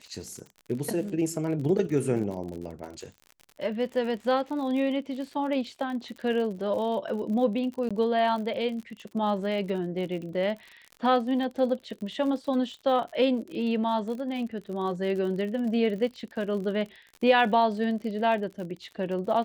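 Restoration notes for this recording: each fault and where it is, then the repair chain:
crackle 51 per s -36 dBFS
7.89–7.91 s: dropout 16 ms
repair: de-click; interpolate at 7.89 s, 16 ms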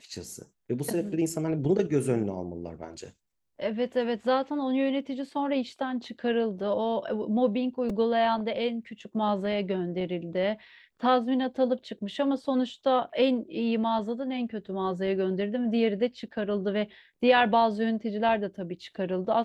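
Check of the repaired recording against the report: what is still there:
nothing left

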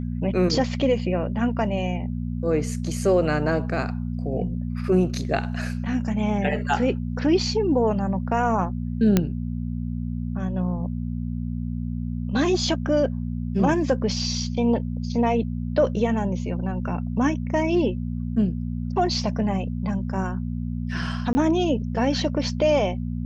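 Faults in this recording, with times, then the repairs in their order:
hum 60 Hz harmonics 4 -28 dBFS
9.17 s: pop -5 dBFS
21.33–21.35 s: dropout 20 ms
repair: de-click; de-hum 60 Hz, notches 4; interpolate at 21.33 s, 20 ms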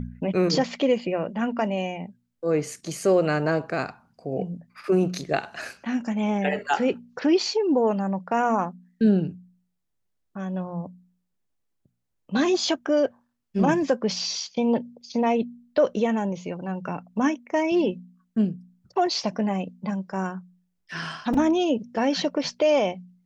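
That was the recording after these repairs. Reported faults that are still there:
nothing left

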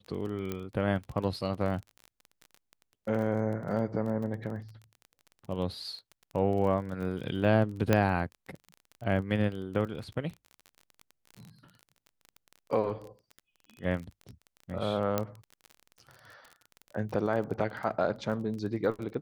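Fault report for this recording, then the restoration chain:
crackle 25 per s -37 dBFS
0.52 s: pop -20 dBFS
7.93 s: pop -10 dBFS
15.18 s: pop -13 dBFS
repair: de-click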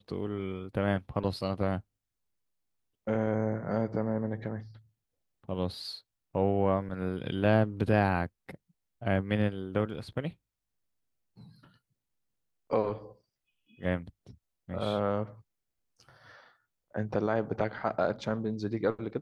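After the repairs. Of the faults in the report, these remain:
nothing left

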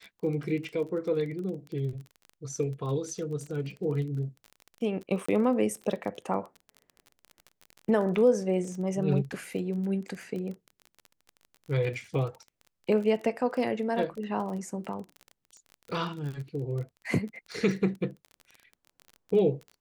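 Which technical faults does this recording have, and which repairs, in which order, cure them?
crackle 28 per s -36 dBFS
5.26–5.29 s: dropout 25 ms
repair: de-click; interpolate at 5.26 s, 25 ms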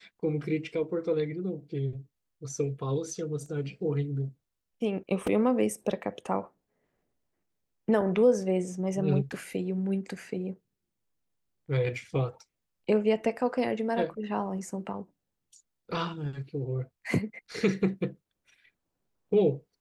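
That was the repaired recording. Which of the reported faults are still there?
nothing left

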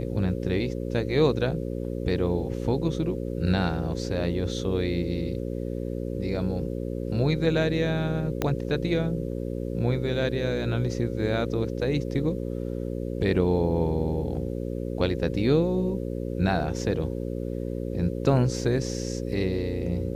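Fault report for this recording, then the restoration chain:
buzz 60 Hz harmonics 9 -31 dBFS
8.42 s: pop -11 dBFS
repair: de-click; de-hum 60 Hz, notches 9

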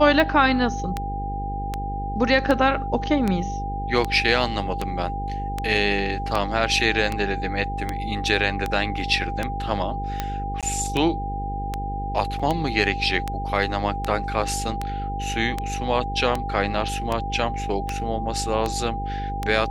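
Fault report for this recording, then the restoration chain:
buzz 50 Hz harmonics 10 -30 dBFS
tick 78 rpm -10 dBFS
whine 800 Hz -29 dBFS
10.61–10.63 s: dropout 17 ms
12.39–12.40 s: dropout 5.6 ms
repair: de-click; de-hum 50 Hz, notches 10; band-stop 800 Hz, Q 30; interpolate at 10.61 s, 17 ms; interpolate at 12.39 s, 5.6 ms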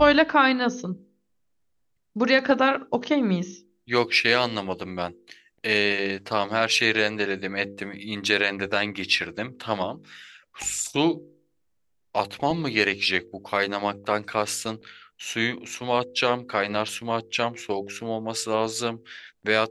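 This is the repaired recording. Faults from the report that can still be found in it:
nothing left

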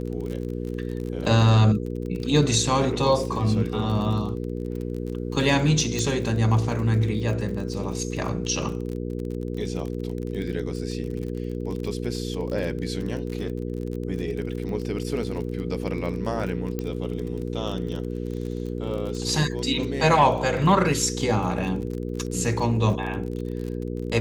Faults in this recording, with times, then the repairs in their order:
crackle 34 per s -31 dBFS
hum 60 Hz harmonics 8 -30 dBFS
5.99 s: pop
16.79 s: pop -16 dBFS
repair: de-click; de-hum 60 Hz, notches 8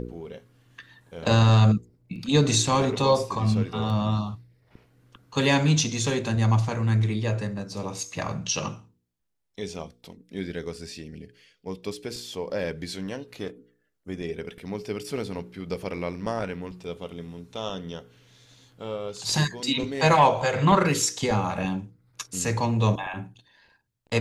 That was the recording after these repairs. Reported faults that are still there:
nothing left

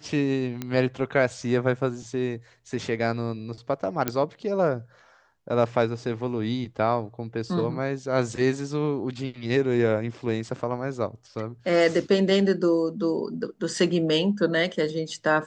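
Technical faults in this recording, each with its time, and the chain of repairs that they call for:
0.62 s: pop -16 dBFS
4.08 s: pop -8 dBFS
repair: de-click

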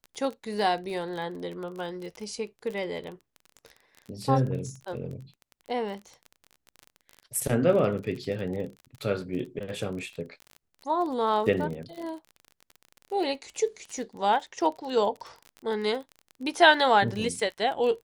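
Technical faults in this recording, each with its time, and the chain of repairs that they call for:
crackle 28 per s -34 dBFS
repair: de-click

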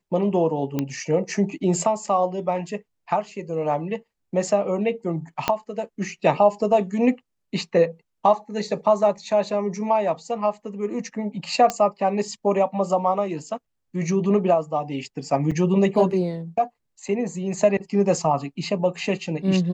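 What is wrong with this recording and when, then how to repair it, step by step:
0.79 s: pop -11 dBFS
5.48 s: pop -6 dBFS
11.70 s: pop -9 dBFS
15.51–15.52 s: dropout 5.4 ms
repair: de-click; interpolate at 15.51 s, 5.4 ms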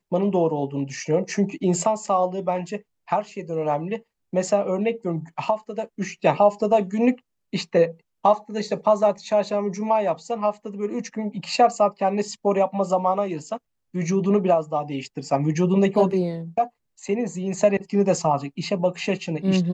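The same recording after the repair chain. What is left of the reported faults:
5.48 s: pop
11.70 s: pop

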